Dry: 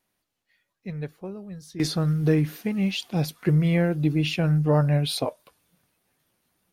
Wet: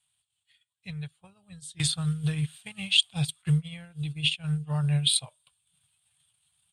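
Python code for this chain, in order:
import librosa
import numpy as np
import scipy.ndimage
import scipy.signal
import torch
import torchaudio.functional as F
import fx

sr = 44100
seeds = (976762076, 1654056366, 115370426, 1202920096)

y = fx.curve_eq(x, sr, hz=(140.0, 220.0, 370.0, 800.0, 1400.0, 2000.0, 3300.0, 5800.0, 8500.0, 14000.0), db=(0, -23, -28, -9, -6, -7, 10, -9, 15, -19))
y = fx.transient(y, sr, attack_db=7, sustain_db=-9)
y = scipy.signal.sosfilt(scipy.signal.butter(2, 63.0, 'highpass', fs=sr, output='sos'), y)
y = fx.upward_expand(y, sr, threshold_db=-42.0, expansion=1.5, at=(3.41, 4.83), fade=0.02)
y = y * librosa.db_to_amplitude(-1.0)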